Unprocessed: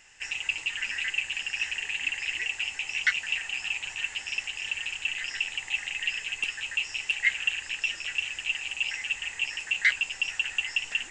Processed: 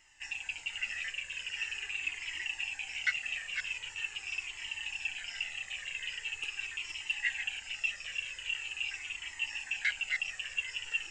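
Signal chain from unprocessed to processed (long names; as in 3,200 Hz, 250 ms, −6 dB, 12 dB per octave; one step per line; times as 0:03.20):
delay that plays each chunk backwards 667 ms, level −5.5 dB
flanger whose copies keep moving one way falling 0.43 Hz
level −3.5 dB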